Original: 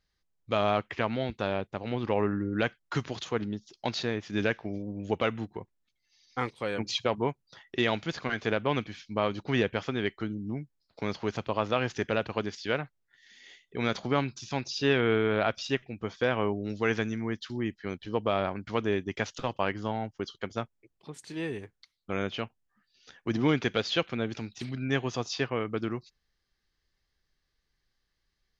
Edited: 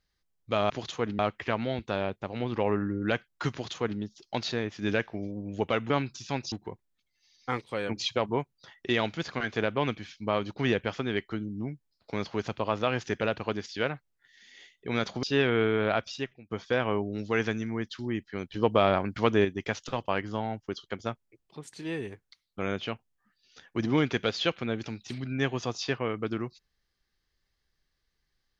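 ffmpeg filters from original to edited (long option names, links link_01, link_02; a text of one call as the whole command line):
ffmpeg -i in.wav -filter_complex "[0:a]asplit=9[link_01][link_02][link_03][link_04][link_05][link_06][link_07][link_08][link_09];[link_01]atrim=end=0.702[link_10];[link_02]atrim=start=3.028:end=3.522[link_11];[link_03]atrim=start=0.698:end=5.412[link_12];[link_04]atrim=start=14.118:end=14.742[link_13];[link_05]atrim=start=5.408:end=14.122[link_14];[link_06]atrim=start=14.738:end=16.02,asetpts=PTS-STARTPTS,afade=type=out:start_time=0.732:duration=0.55:silence=0.105925[link_15];[link_07]atrim=start=16.02:end=18.052,asetpts=PTS-STARTPTS,afade=type=in:duration=0.004:curve=hsin:silence=0.105925[link_16];[link_08]atrim=start=18.048:end=18.962,asetpts=PTS-STARTPTS,volume=5dB[link_17];[link_09]atrim=start=18.958[link_18];[link_10][link_11]acrossfade=duration=0.004:curve1=hsin:curve2=hsin[link_19];[link_19][link_12]acrossfade=duration=0.004:curve1=hsin:curve2=hsin[link_20];[link_20][link_13]acrossfade=duration=0.004:curve1=hsin:curve2=hsin[link_21];[link_21][link_14]acrossfade=duration=0.004:curve1=hsin:curve2=hsin[link_22];[link_15][link_16]concat=n=2:v=0:a=1[link_23];[link_22][link_23]acrossfade=duration=0.004:curve1=hsin:curve2=hsin[link_24];[link_24][link_17]acrossfade=duration=0.004:curve1=hsin:curve2=hsin[link_25];[link_25][link_18]acrossfade=duration=0.004:curve1=hsin:curve2=hsin" out.wav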